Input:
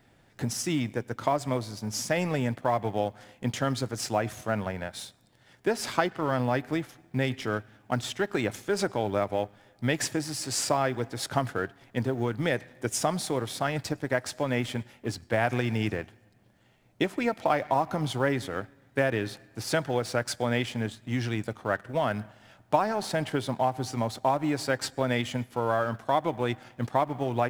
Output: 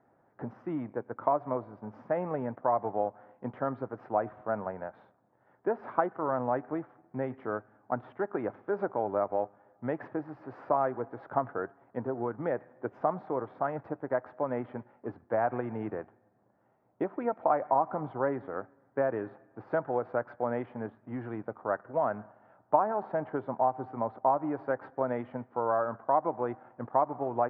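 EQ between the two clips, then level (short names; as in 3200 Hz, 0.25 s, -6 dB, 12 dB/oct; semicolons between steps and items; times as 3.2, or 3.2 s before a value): HPF 610 Hz 6 dB/oct; LPF 1200 Hz 24 dB/oct; +2.0 dB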